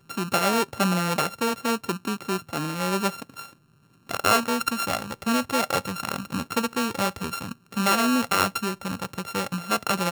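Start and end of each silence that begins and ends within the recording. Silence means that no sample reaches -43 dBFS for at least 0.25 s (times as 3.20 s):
3.53–4.09 s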